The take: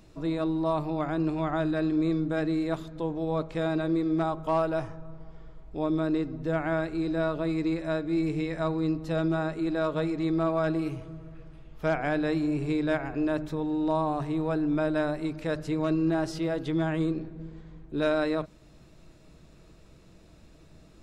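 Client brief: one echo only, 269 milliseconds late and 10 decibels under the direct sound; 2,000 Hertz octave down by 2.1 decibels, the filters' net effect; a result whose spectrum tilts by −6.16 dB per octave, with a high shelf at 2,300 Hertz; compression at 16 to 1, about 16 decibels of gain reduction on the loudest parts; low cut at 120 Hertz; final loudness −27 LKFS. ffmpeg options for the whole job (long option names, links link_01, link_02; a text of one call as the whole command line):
ffmpeg -i in.wav -af "highpass=120,equalizer=frequency=2000:width_type=o:gain=-6,highshelf=frequency=2300:gain=6,acompressor=threshold=-39dB:ratio=16,aecho=1:1:269:0.316,volume=16dB" out.wav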